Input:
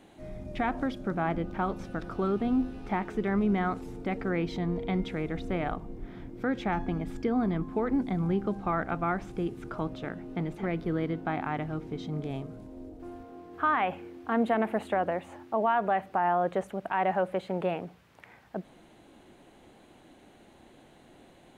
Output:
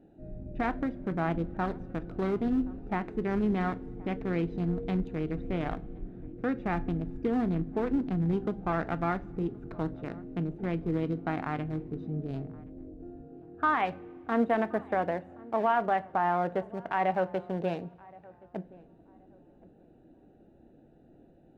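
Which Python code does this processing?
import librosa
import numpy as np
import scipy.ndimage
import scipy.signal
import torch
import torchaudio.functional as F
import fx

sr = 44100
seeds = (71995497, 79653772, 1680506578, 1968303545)

y = fx.wiener(x, sr, points=41)
y = fx.echo_filtered(y, sr, ms=1073, feedback_pct=27, hz=1200.0, wet_db=-22)
y = fx.rev_double_slope(y, sr, seeds[0], early_s=0.25, late_s=2.1, knee_db=-22, drr_db=12.5)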